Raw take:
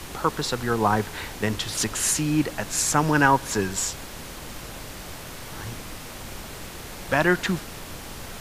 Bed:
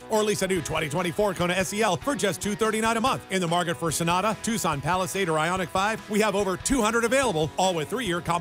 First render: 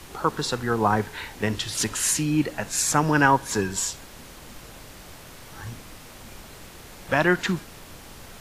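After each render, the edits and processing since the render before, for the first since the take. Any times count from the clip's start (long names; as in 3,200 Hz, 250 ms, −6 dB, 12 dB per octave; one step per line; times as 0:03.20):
noise reduction from a noise print 6 dB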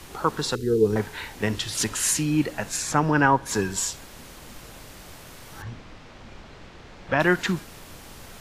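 0:00.55–0:00.96: drawn EQ curve 280 Hz 0 dB, 440 Hz +11 dB, 650 Hz −28 dB, 1,000 Hz −28 dB, 2,400 Hz −10 dB, 4,100 Hz −1 dB
0:02.76–0:03.45: low-pass filter 3,900 Hz → 1,800 Hz 6 dB per octave
0:05.62–0:07.20: high-frequency loss of the air 150 metres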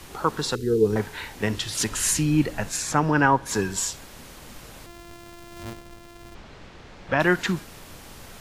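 0:01.92–0:02.69: low-shelf EQ 110 Hz +10.5 dB
0:04.86–0:06.35: samples sorted by size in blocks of 128 samples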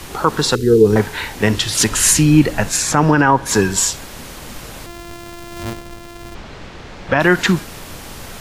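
boost into a limiter +10.5 dB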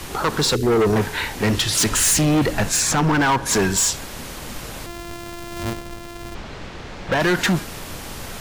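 hard clipping −14.5 dBFS, distortion −6 dB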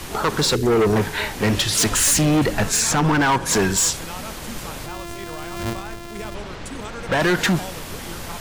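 mix in bed −12.5 dB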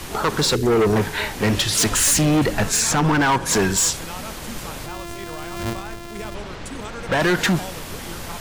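no processing that can be heard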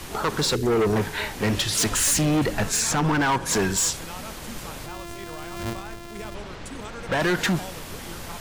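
level −4 dB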